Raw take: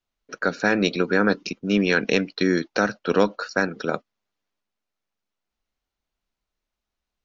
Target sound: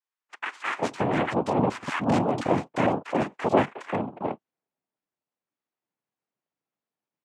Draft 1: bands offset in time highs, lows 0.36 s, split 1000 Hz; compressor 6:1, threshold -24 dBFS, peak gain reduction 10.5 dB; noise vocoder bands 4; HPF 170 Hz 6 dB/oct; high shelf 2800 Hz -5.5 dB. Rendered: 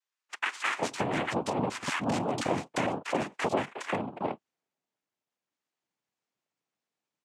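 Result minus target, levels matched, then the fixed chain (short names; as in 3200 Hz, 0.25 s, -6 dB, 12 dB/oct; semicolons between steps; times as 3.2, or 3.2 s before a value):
compressor: peak gain reduction +10.5 dB; 4000 Hz band +6.5 dB
bands offset in time highs, lows 0.36 s, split 1000 Hz; noise vocoder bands 4; HPF 170 Hz 6 dB/oct; high shelf 2800 Hz -17.5 dB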